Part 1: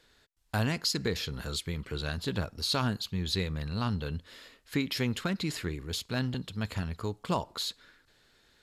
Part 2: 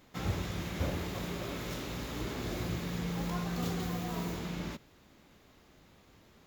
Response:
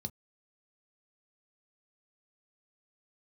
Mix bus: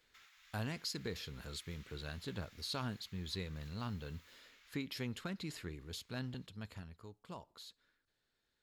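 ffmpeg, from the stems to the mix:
-filter_complex "[0:a]highshelf=frequency=6600:gain=7,volume=-11dB,afade=type=out:start_time=6.37:duration=0.62:silence=0.398107[link_01];[1:a]acompressor=threshold=-49dB:ratio=2,highpass=frequency=1500:width=0.5412,highpass=frequency=1500:width=1.3066,volume=-7.5dB[link_02];[link_01][link_02]amix=inputs=2:normalize=0,highshelf=frequency=5500:gain=-6.5"

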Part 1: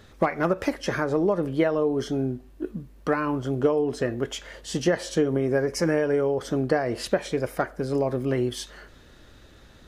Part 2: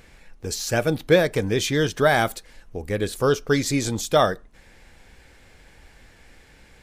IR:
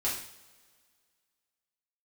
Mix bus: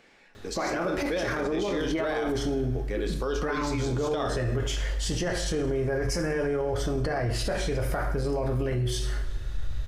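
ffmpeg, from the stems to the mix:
-filter_complex "[0:a]asubboost=boost=11.5:cutoff=79,adelay=350,volume=-1dB,asplit=2[link_01][link_02];[link_02]volume=-4.5dB[link_03];[1:a]acrossover=split=170 6600:gain=0.0891 1 0.2[link_04][link_05][link_06];[link_04][link_05][link_06]amix=inputs=3:normalize=0,volume=-6.5dB,asplit=2[link_07][link_08];[link_08]volume=-9dB[link_09];[2:a]atrim=start_sample=2205[link_10];[link_03][link_09]amix=inputs=2:normalize=0[link_11];[link_11][link_10]afir=irnorm=-1:irlink=0[link_12];[link_01][link_07][link_12]amix=inputs=3:normalize=0,alimiter=limit=-20.5dB:level=0:latency=1:release=20"

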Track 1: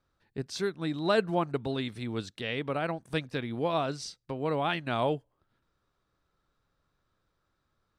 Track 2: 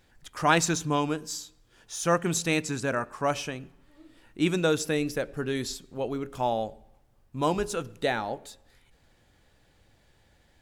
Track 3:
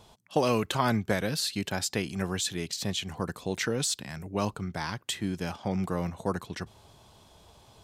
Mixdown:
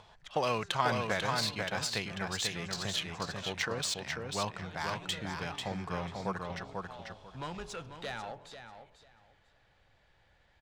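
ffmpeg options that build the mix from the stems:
ffmpeg -i stem1.wav -i stem2.wav -i stem3.wav -filter_complex "[0:a]acompressor=threshold=-37dB:ratio=2.5,volume=-14.5dB[link_01];[1:a]acrossover=split=260|3000[link_02][link_03][link_04];[link_03]acompressor=threshold=-34dB:ratio=4[link_05];[link_02][link_05][link_04]amix=inputs=3:normalize=0,asoftclip=type=tanh:threshold=-27.5dB,volume=1dB,asplit=2[link_06][link_07];[link_07]volume=-9.5dB[link_08];[2:a]acompressor=mode=upward:threshold=-48dB:ratio=2.5,volume=0dB,asplit=3[link_09][link_10][link_11];[link_10]volume=-4dB[link_12];[link_11]apad=whole_len=468024[link_13];[link_06][link_13]sidechaincompress=threshold=-41dB:ratio=6:attack=16:release=454[link_14];[link_08][link_12]amix=inputs=2:normalize=0,aecho=0:1:492|984|1476:1|0.19|0.0361[link_15];[link_01][link_14][link_09][link_15]amix=inputs=4:normalize=0,equalizer=frequency=290:width=0.87:gain=-11.5,adynamicsmooth=sensitivity=3:basefreq=3700,lowshelf=frequency=150:gain=-7.5" out.wav

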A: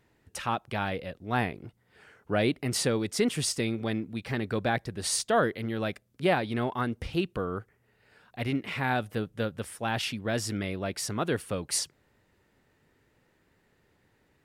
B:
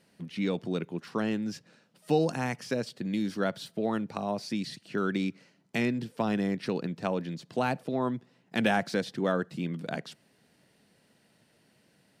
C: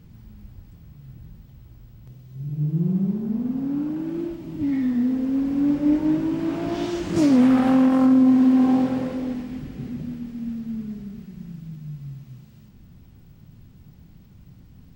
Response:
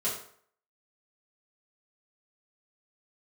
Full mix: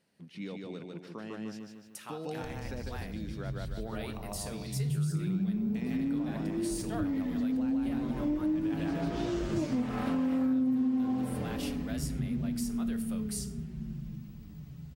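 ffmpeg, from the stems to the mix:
-filter_complex "[0:a]aemphasis=mode=production:type=bsi,adelay=1600,volume=-14dB,asplit=2[link_01][link_02];[link_02]volume=-16dB[link_03];[1:a]volume=-9.5dB,asplit=2[link_04][link_05];[link_05]volume=-5dB[link_06];[2:a]lowshelf=frequency=160:gain=10.5,asplit=2[link_07][link_08];[link_08]adelay=6.2,afreqshift=-0.68[link_09];[link_07][link_09]amix=inputs=2:normalize=1,adelay=2400,volume=-2.5dB,asplit=2[link_10][link_11];[link_11]volume=-16.5dB[link_12];[link_01][link_04]amix=inputs=2:normalize=0,alimiter=level_in=6.5dB:limit=-24dB:level=0:latency=1:release=353,volume=-6.5dB,volume=0dB[link_13];[3:a]atrim=start_sample=2205[link_14];[link_03][link_12]amix=inputs=2:normalize=0[link_15];[link_15][link_14]afir=irnorm=-1:irlink=0[link_16];[link_06]aecho=0:1:150|300|450|600|750|900|1050:1|0.48|0.23|0.111|0.0531|0.0255|0.0122[link_17];[link_10][link_13][link_16][link_17]amix=inputs=4:normalize=0,acompressor=threshold=-29dB:ratio=4"

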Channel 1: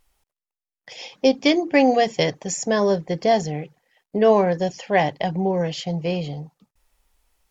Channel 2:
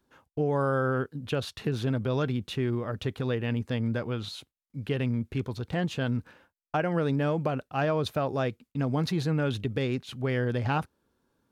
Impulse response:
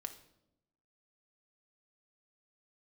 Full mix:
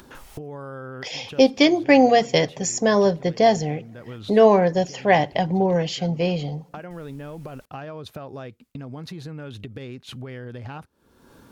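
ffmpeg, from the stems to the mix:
-filter_complex "[0:a]adelay=150,volume=0.5dB,asplit=2[link_01][link_02];[link_02]volume=-12.5dB[link_03];[1:a]acompressor=threshold=-36dB:ratio=4,volume=-7dB[link_04];[2:a]atrim=start_sample=2205[link_05];[link_03][link_05]afir=irnorm=-1:irlink=0[link_06];[link_01][link_04][link_06]amix=inputs=3:normalize=0,acompressor=mode=upward:threshold=-26dB:ratio=2.5"

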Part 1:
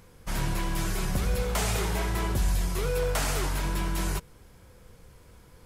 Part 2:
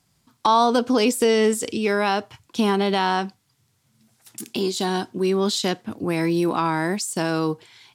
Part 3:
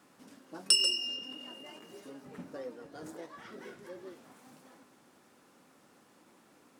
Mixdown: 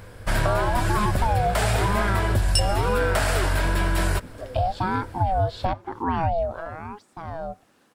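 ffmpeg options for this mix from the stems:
ffmpeg -i stem1.wav -i stem2.wav -i stem3.wav -filter_complex "[0:a]acontrast=73,volume=2.5dB[link_01];[1:a]lowpass=4500,equalizer=frequency=450:width=0.72:gain=13,aeval=exprs='val(0)*sin(2*PI*450*n/s+450*0.4/1*sin(2*PI*1*n/s))':channel_layout=same,volume=-7dB,afade=type=out:start_time=6.25:duration=0.22:silence=0.237137,asplit=2[link_02][link_03];[2:a]adelay=1850,volume=0.5dB[link_04];[link_03]apad=whole_len=381316[link_05];[link_04][link_05]sidechaincompress=threshold=-32dB:ratio=8:attack=42:release=220[link_06];[link_01][link_02]amix=inputs=2:normalize=0,equalizer=frequency=100:width_type=o:width=0.33:gain=10,equalizer=frequency=160:width_type=o:width=0.33:gain=-8,equalizer=frequency=630:width_type=o:width=0.33:gain=8,equalizer=frequency=1600:width_type=o:width=0.33:gain=7,equalizer=frequency=6300:width_type=o:width=0.33:gain=-8,equalizer=frequency=12500:width_type=o:width=0.33:gain=-9,acompressor=threshold=-18dB:ratio=6,volume=0dB[link_07];[link_06][link_07]amix=inputs=2:normalize=0" out.wav

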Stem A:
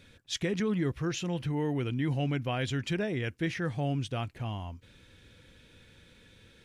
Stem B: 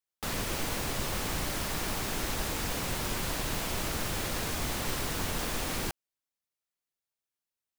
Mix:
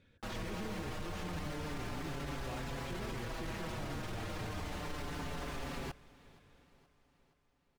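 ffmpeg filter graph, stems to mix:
ffmpeg -i stem1.wav -i stem2.wav -filter_complex "[0:a]lowpass=frequency=1900:poles=1,acompressor=threshold=-31dB:ratio=6,volume=-9dB[link_01];[1:a]aemphasis=mode=reproduction:type=75kf,asplit=2[link_02][link_03];[link_03]adelay=5.7,afreqshift=-0.3[link_04];[link_02][link_04]amix=inputs=2:normalize=1,volume=-2dB,asplit=2[link_05][link_06];[link_06]volume=-22.5dB,aecho=0:1:473|946|1419|1892|2365|2838|3311|3784:1|0.55|0.303|0.166|0.0915|0.0503|0.0277|0.0152[link_07];[link_01][link_05][link_07]amix=inputs=3:normalize=0,alimiter=level_in=8dB:limit=-24dB:level=0:latency=1:release=18,volume=-8dB" out.wav

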